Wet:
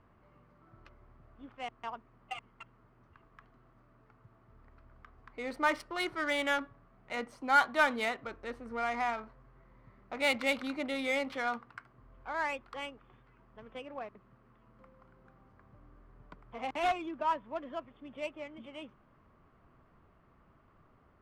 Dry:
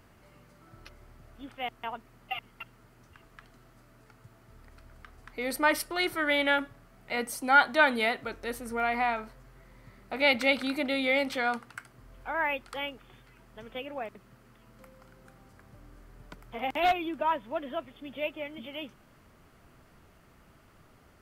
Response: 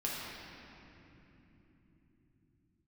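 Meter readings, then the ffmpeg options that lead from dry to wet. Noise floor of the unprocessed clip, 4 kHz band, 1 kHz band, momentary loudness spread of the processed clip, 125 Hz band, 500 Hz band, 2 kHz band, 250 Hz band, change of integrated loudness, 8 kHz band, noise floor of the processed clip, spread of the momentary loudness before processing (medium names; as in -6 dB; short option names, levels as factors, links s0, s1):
-59 dBFS, -6.5 dB, -4.0 dB, 19 LU, -5.5 dB, -5.5 dB, -5.5 dB, -5.5 dB, -5.0 dB, -7.5 dB, -65 dBFS, 21 LU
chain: -af "equalizer=f=1100:w=4.9:g=7.5,adynamicsmooth=sensitivity=4.5:basefreq=2200,volume=0.531"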